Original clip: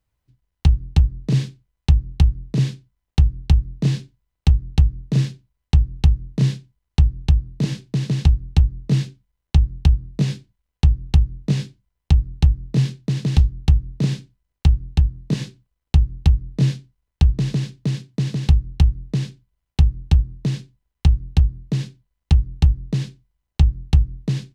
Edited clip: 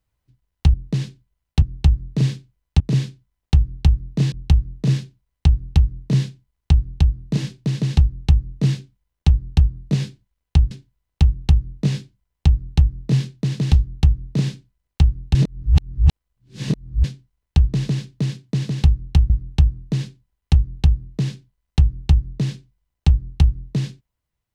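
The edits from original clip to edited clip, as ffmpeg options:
-filter_complex "[0:a]asplit=10[a][b][c][d][e][f][g][h][i][j];[a]atrim=end=0.742[k];[b]atrim=start=18.948:end=19.832[l];[c]atrim=start=0.738:end=1.922[m];[d]atrim=start=2.448:end=3.972[n];[e]atrim=start=4.598:end=10.992[o];[f]atrim=start=3.968:end=4.602[p];[g]atrim=start=10.988:end=15.002[q];[h]atrim=start=14.998:end=16.692,asetpts=PTS-STARTPTS,areverse[r];[i]atrim=start=16.688:end=18.952[s];[j]atrim=start=19.828[t];[k][l]acrossfade=d=0.004:c1=hsin:c2=hsin[u];[u][m]acrossfade=d=0.004:c1=hsin:c2=hsin[v];[v][n]acrossfade=d=0.004:c1=hsin:c2=hsin[w];[w][o]acrossfade=d=0.004:c1=hsin:c2=hsin[x];[x][p]acrossfade=d=0.004:c1=hsin:c2=hsin[y];[y][q]acrossfade=d=0.004:c1=hsin:c2=hsin[z];[z][r]acrossfade=d=0.004:c1=hsin:c2=hsin[aa];[aa][s]acrossfade=d=0.004:c1=hsin:c2=hsin[ab];[ab][t]acrossfade=d=0.004:c1=hsin:c2=hsin"

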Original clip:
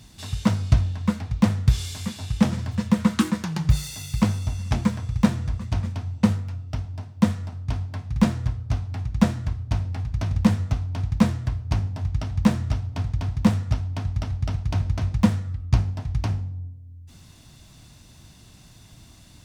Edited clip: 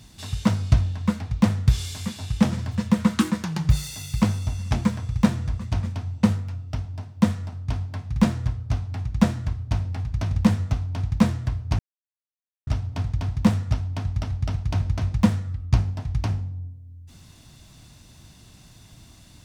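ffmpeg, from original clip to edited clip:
-filter_complex "[0:a]asplit=3[a][b][c];[a]atrim=end=11.79,asetpts=PTS-STARTPTS,afade=t=out:st=11.786:d=0.004:c=hsin[d];[b]atrim=start=11.79:end=12.67,asetpts=PTS-STARTPTS,volume=0[e];[c]atrim=start=12.67,asetpts=PTS-STARTPTS,afade=t=in:d=0.004:c=hsin[f];[d][e][f]concat=n=3:v=0:a=1"

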